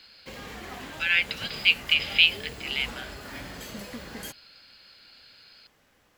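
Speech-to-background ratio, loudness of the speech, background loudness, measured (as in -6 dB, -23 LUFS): 16.5 dB, -23.5 LUFS, -40.0 LUFS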